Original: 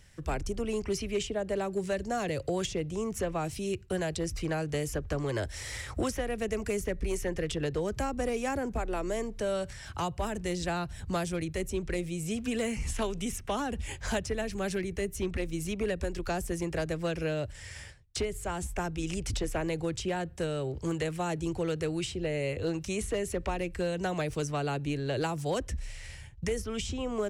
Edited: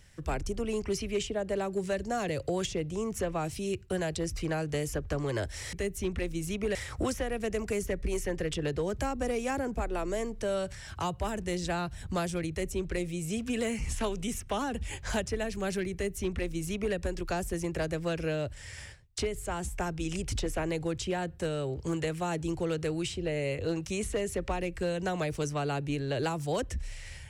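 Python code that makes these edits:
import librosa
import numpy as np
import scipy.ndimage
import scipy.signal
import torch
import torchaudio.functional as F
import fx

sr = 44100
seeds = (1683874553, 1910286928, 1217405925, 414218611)

y = fx.edit(x, sr, fx.duplicate(start_s=14.91, length_s=1.02, to_s=5.73), tone=tone)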